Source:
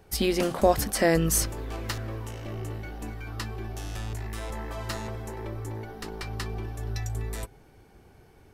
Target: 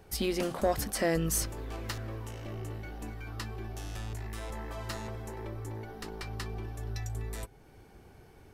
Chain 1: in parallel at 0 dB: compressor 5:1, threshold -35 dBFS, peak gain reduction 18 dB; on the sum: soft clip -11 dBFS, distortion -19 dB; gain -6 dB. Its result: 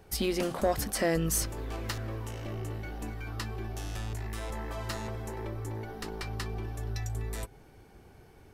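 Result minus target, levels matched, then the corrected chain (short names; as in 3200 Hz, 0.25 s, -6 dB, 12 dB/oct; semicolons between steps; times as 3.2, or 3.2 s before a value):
compressor: peak gain reduction -9 dB
in parallel at 0 dB: compressor 5:1, threshold -46.5 dBFS, peak gain reduction 27 dB; on the sum: soft clip -11 dBFS, distortion -20 dB; gain -6 dB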